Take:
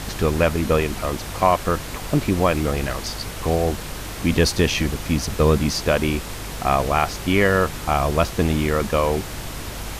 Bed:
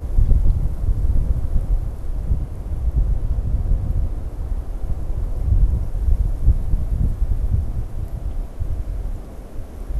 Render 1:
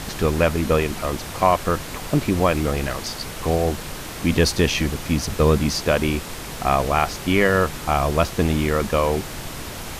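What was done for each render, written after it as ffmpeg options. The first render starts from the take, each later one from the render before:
-af "bandreject=f=50:t=h:w=4,bandreject=f=100:t=h:w=4"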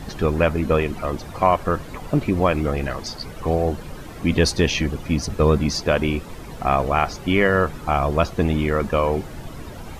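-af "afftdn=nr=13:nf=-33"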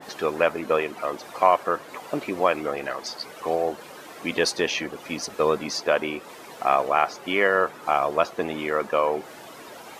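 -af "highpass=450,adynamicequalizer=threshold=0.0158:dfrequency=2300:dqfactor=0.7:tfrequency=2300:tqfactor=0.7:attack=5:release=100:ratio=0.375:range=3.5:mode=cutabove:tftype=highshelf"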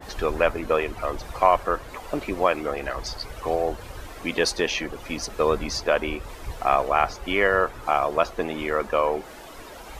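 -filter_complex "[1:a]volume=-19.5dB[a];[0:a][a]amix=inputs=2:normalize=0"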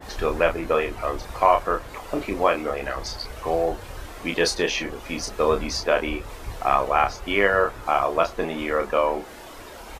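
-filter_complex "[0:a]asplit=2[a][b];[b]adelay=30,volume=-6dB[c];[a][c]amix=inputs=2:normalize=0"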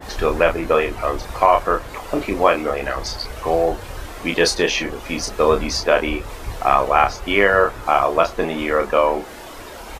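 -af "volume=5dB,alimiter=limit=-1dB:level=0:latency=1"

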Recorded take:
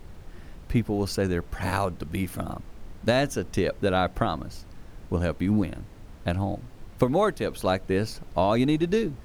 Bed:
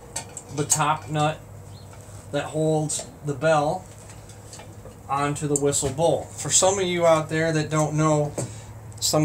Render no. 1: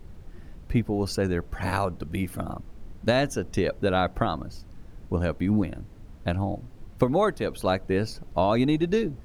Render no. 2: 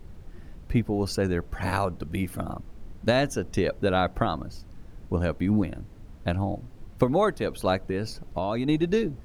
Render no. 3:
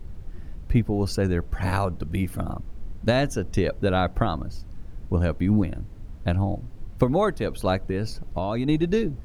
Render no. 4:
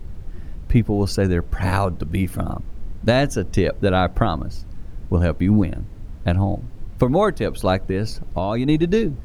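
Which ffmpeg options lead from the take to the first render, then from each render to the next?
-af "afftdn=nr=6:nf=-46"
-filter_complex "[0:a]asettb=1/sr,asplit=3[a][b][c];[a]atrim=end=7.884[d];[b]atrim=start=7.88:end=8.69,asetpts=PTS-STARTPTS,afade=t=in:d=0.004:c=qsin,afade=t=out:st=0.806:d=0.004:c=qsin,acompressor=threshold=-23dB:ratio=6:attack=3.2:release=140:knee=1:detection=peak[e];[c]atrim=start=8.686[f];[d][e]acrossfade=d=0.004:c1=hsin:c2=qsin[g];[g][f]acrossfade=d=0.004:c1=qsin:c2=hsin"
-af "lowshelf=f=130:g=8"
-af "volume=4.5dB,alimiter=limit=-2dB:level=0:latency=1"

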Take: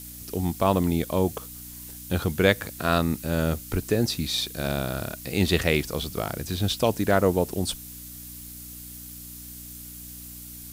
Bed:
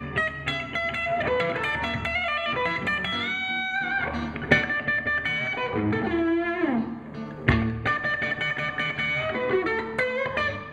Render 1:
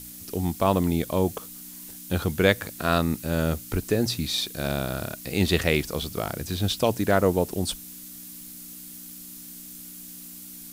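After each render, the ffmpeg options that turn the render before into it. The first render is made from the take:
-af "bandreject=f=60:t=h:w=4,bandreject=f=120:t=h:w=4"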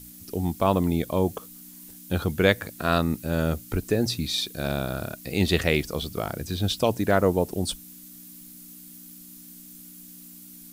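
-af "afftdn=nr=6:nf=-42"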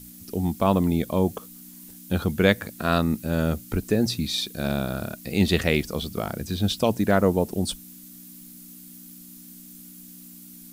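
-af "equalizer=f=210:w=3.6:g=6"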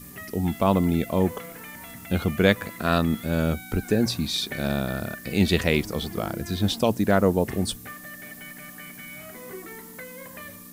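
-filter_complex "[1:a]volume=-16dB[a];[0:a][a]amix=inputs=2:normalize=0"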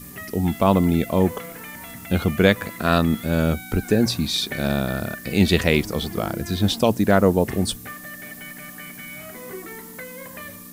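-af "volume=3.5dB,alimiter=limit=-2dB:level=0:latency=1"

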